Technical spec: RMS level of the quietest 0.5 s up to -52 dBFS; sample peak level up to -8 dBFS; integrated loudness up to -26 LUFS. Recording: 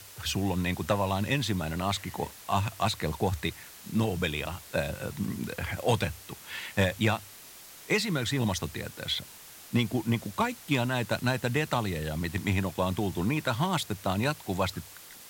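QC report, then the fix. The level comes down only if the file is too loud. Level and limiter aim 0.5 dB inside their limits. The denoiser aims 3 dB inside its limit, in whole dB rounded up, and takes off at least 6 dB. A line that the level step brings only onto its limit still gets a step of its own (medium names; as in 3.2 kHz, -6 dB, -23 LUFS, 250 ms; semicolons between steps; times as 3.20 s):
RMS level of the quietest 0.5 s -49 dBFS: fail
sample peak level -14.0 dBFS: pass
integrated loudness -30.0 LUFS: pass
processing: noise reduction 6 dB, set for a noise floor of -49 dBFS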